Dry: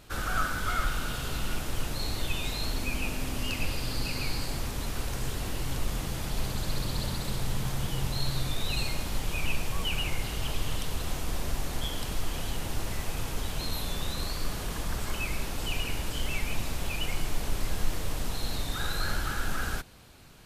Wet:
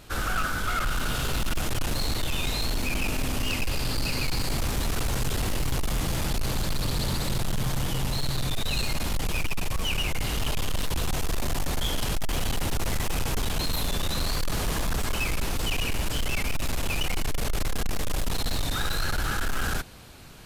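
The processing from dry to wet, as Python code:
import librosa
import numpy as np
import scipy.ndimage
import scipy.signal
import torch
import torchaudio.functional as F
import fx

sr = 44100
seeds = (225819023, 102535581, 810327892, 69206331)

y = fx.rider(x, sr, range_db=10, speed_s=0.5)
y = np.clip(10.0 ** (28.5 / 20.0) * y, -1.0, 1.0) / 10.0 ** (28.5 / 20.0)
y = y * 10.0 ** (6.5 / 20.0)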